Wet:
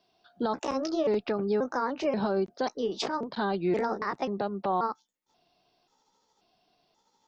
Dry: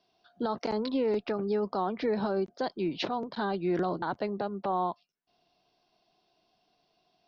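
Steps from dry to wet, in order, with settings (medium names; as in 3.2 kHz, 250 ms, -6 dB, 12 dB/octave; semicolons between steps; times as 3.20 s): pitch shift switched off and on +4 st, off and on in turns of 534 ms; trim +2 dB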